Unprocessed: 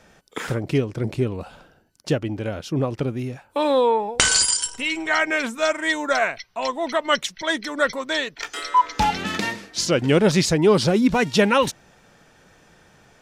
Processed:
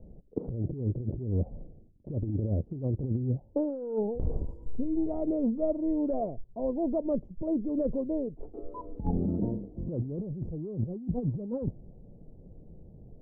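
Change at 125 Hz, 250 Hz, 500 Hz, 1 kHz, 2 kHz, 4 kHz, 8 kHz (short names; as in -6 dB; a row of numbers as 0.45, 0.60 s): -4.5 dB, -6.0 dB, -11.5 dB, -22.5 dB, under -40 dB, under -40 dB, under -40 dB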